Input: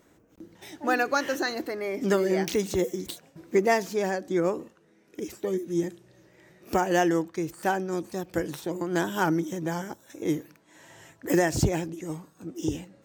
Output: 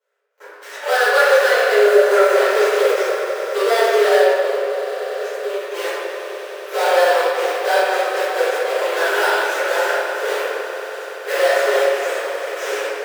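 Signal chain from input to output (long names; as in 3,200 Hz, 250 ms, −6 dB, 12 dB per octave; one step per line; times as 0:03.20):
gap after every zero crossing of 0.2 ms
0:01.81–0:02.34: time-frequency box erased 1,400–5,800 Hz
leveller curve on the samples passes 5
echo that builds up and dies away 95 ms, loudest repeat 5, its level −16.5 dB
0:04.27–0:05.74: downward compressor, threshold −22 dBFS, peak gain reduction 10 dB
Chebyshev high-pass with heavy ripple 400 Hz, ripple 9 dB
convolution reverb RT60 1.9 s, pre-delay 4 ms, DRR −15 dB
every ending faded ahead of time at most 150 dB per second
level −7 dB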